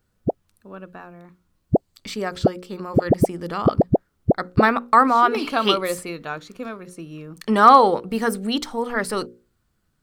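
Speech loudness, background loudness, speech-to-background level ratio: −20.0 LKFS, −23.5 LKFS, 3.5 dB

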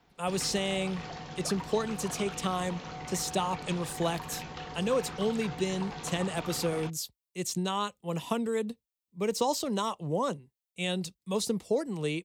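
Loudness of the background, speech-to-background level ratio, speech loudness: −41.0 LKFS, 8.5 dB, −32.5 LKFS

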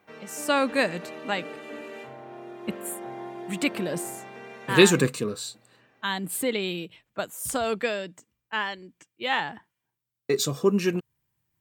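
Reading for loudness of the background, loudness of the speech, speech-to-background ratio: −40.0 LKFS, −26.5 LKFS, 13.5 dB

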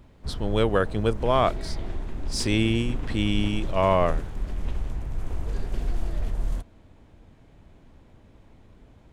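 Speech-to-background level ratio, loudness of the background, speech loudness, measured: 9.5 dB, −34.5 LKFS, −25.0 LKFS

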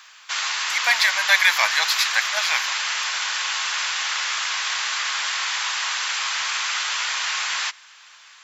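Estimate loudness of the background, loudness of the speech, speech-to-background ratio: −23.0 LKFS, −20.0 LKFS, 3.0 dB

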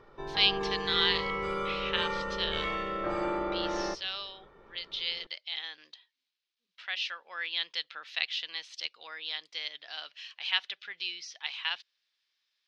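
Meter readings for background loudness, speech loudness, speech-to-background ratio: −33.5 LKFS, −33.0 LKFS, 0.5 dB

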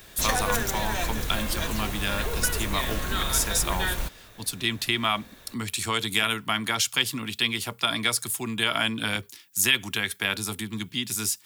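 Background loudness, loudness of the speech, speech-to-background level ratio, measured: −29.0 LKFS, −27.0 LKFS, 2.0 dB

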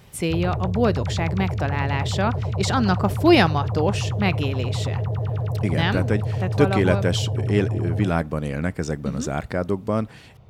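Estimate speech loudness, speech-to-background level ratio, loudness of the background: −23.5 LKFS, 2.5 dB, −26.0 LKFS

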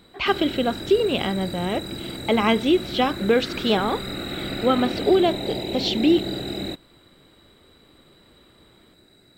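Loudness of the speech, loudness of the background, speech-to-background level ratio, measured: −22.5 LKFS, −30.5 LKFS, 8.0 dB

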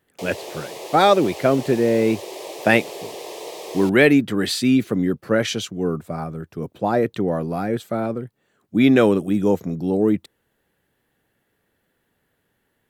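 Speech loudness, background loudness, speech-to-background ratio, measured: −20.0 LKFS, −34.5 LKFS, 14.5 dB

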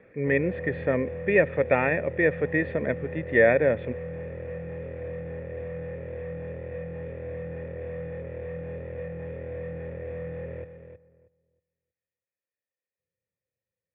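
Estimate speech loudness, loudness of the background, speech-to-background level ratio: −24.5 LKFS, −36.5 LKFS, 12.0 dB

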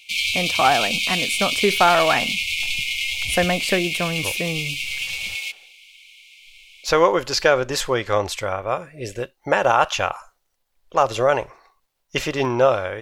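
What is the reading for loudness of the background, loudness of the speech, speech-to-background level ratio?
−22.0 LKFS, −21.5 LKFS, 0.5 dB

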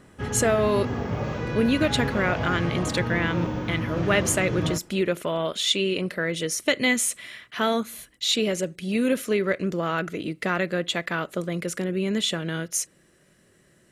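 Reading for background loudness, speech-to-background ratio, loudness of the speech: −29.5 LKFS, 4.0 dB, −25.5 LKFS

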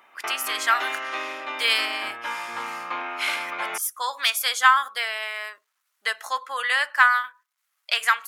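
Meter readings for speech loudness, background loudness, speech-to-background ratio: −23.0 LKFS, −31.0 LKFS, 8.0 dB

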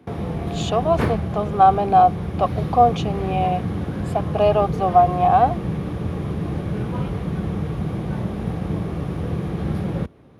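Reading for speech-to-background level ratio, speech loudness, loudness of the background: 6.5 dB, −19.5 LKFS, −26.0 LKFS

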